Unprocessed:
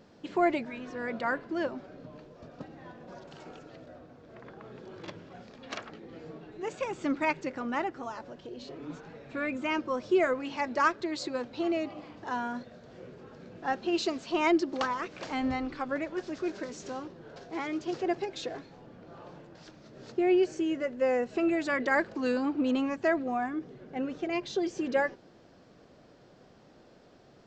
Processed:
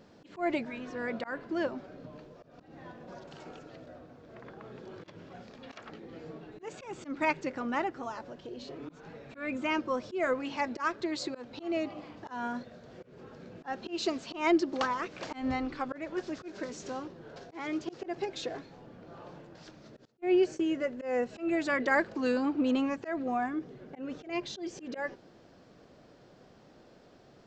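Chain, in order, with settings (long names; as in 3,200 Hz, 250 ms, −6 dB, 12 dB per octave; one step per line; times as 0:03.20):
volume swells 173 ms
0:20.05–0:20.79: noise gate −37 dBFS, range −25 dB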